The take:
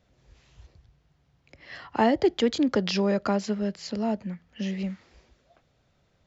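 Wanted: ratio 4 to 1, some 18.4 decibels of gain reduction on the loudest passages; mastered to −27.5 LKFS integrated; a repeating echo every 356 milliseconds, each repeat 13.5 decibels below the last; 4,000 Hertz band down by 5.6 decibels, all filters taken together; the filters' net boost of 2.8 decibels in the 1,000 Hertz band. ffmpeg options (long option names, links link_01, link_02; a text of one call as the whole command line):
ffmpeg -i in.wav -af "equalizer=frequency=1000:width_type=o:gain=4,equalizer=frequency=4000:width_type=o:gain=-8,acompressor=threshold=-39dB:ratio=4,aecho=1:1:356|712:0.211|0.0444,volume=13.5dB" out.wav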